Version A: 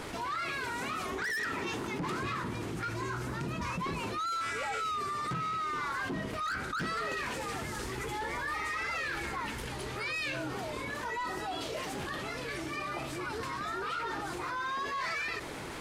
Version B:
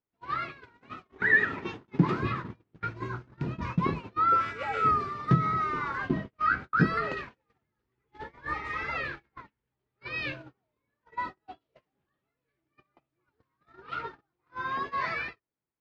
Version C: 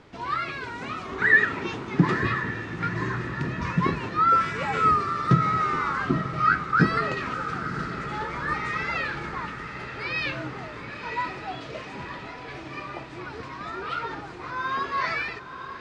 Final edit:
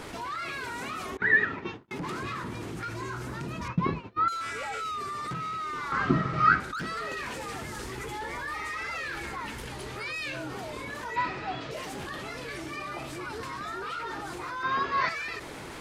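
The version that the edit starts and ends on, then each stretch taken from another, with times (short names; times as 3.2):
A
1.17–1.91 from B
3.68–4.28 from B
5.92–6.6 from C
11.16–11.71 from C
14.63–15.09 from C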